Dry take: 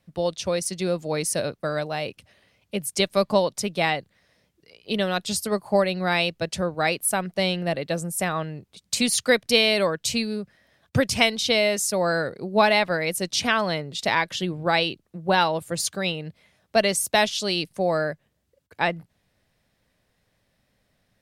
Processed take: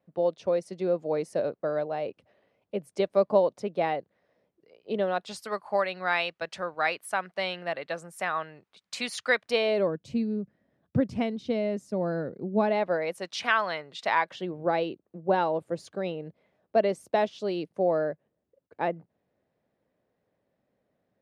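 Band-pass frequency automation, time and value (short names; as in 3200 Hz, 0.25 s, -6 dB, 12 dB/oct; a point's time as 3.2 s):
band-pass, Q 1
5.01 s 500 Hz
5.41 s 1300 Hz
9.42 s 1300 Hz
9.95 s 240 Hz
12.56 s 240 Hz
13.33 s 1300 Hz
13.98 s 1300 Hz
14.69 s 430 Hz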